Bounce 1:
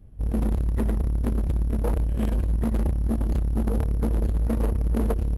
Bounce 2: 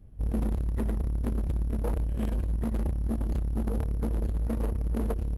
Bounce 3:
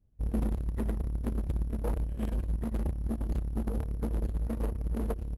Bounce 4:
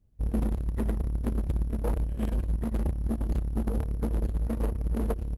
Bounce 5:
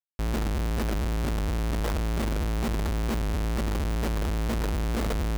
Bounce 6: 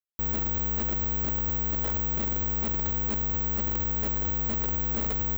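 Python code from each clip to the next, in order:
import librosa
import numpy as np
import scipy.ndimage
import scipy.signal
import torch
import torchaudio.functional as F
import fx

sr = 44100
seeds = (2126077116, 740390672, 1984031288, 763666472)

y1 = fx.rider(x, sr, range_db=10, speed_s=0.5)
y1 = y1 * 10.0 ** (-5.0 / 20.0)
y2 = fx.upward_expand(y1, sr, threshold_db=-37.0, expansion=2.5)
y3 = fx.rider(y2, sr, range_db=10, speed_s=0.5)
y3 = y3 * 10.0 ** (3.0 / 20.0)
y4 = fx.schmitt(y3, sr, flips_db=-46.5)
y4 = y4 * 10.0 ** (1.5 / 20.0)
y5 = (np.kron(scipy.signal.resample_poly(y4, 1, 2), np.eye(2)[0]) * 2)[:len(y4)]
y5 = y5 * 10.0 ** (-5.0 / 20.0)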